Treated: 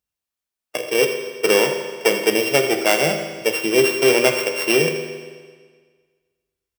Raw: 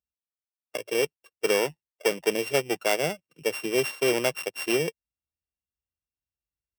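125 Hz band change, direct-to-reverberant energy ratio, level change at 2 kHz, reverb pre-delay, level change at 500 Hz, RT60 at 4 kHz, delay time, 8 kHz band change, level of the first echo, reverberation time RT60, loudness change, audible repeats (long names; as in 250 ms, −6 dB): +7.5 dB, 4.0 dB, +9.5 dB, 10 ms, +8.5 dB, 1.5 s, 82 ms, +8.5 dB, −14.0 dB, 1.6 s, +8.5 dB, 1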